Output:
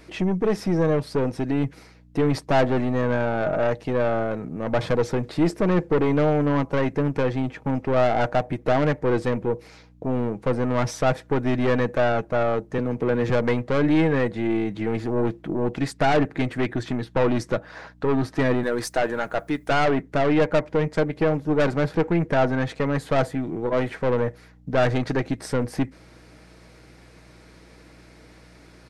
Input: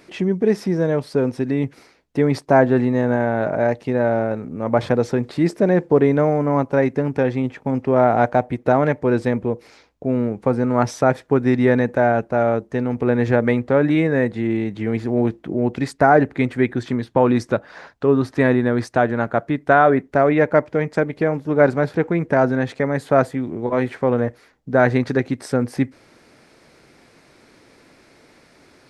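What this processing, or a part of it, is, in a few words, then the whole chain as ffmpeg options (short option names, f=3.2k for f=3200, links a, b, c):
valve amplifier with mains hum: -filter_complex "[0:a]asettb=1/sr,asplit=3[a][b][c];[a]atrim=end=12.784[d];[b]atrim=start=12.78:end=13.3,asetpts=PTS-STARTPTS,afade=t=in:d=0.004:c=qsin,afade=t=out:st=0.516:d=0.004:c=qsin,highpass=f=120:w=0.5412,highpass=f=120:w=1.3066[e];[c]atrim=start=13.296[f];[d][e]acrossfade=d=0.004:c1=hsin:c2=qsin[g];[g][f]acrossfade=d=0.004:c1=qsin:c2=hsin,asettb=1/sr,asplit=3[h][i][j];[h]atrim=end=18.634[k];[i]atrim=start=18.63:end=19.71,asetpts=PTS-STARTPTS,afade=t=in:d=0.004:c=qsin,afade=t=out:st=1.076:d=0.004:c=qsin,aemphasis=mode=production:type=bsi[l];[j]atrim=start=19.706[m];[k][l]acrossfade=d=0.004:c1=hsin:c2=qsin[n];[n][m]acrossfade=d=0.004:c1=qsin:c2=hsin,aeval=exprs='(tanh(6.31*val(0)+0.3)-tanh(0.3))/6.31':c=same,aeval=exprs='val(0)+0.00316*(sin(2*PI*60*n/s)+sin(2*PI*2*60*n/s)/2+sin(2*PI*3*60*n/s)/3+sin(2*PI*4*60*n/s)/4+sin(2*PI*5*60*n/s)/5)':c=same,aecho=1:1:6.3:0.31"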